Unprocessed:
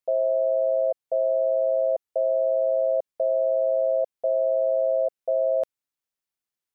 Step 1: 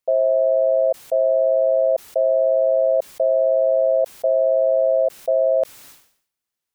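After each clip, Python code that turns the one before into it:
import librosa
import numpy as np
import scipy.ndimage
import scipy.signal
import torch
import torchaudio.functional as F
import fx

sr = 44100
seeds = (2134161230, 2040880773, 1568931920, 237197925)

y = fx.sustainer(x, sr, db_per_s=96.0)
y = y * 10.0 ** (5.0 / 20.0)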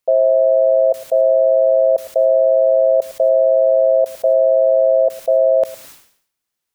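y = fx.echo_feedback(x, sr, ms=109, feedback_pct=15, wet_db=-19.0)
y = y * 10.0 ** (4.5 / 20.0)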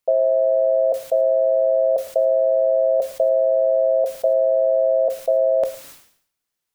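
y = fx.room_shoebox(x, sr, seeds[0], volume_m3=150.0, walls='furnished', distance_m=0.38)
y = y * 10.0 ** (-2.0 / 20.0)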